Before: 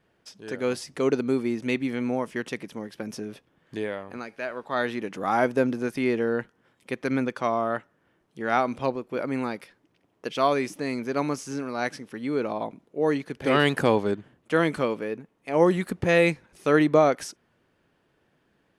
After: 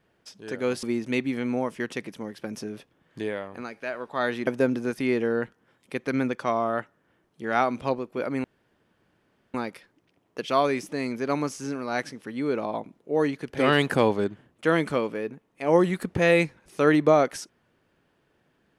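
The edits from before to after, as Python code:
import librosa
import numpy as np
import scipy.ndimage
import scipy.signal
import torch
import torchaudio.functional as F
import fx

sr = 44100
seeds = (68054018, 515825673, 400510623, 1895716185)

y = fx.edit(x, sr, fx.cut(start_s=0.83, length_s=0.56),
    fx.cut(start_s=5.03, length_s=0.41),
    fx.insert_room_tone(at_s=9.41, length_s=1.1), tone=tone)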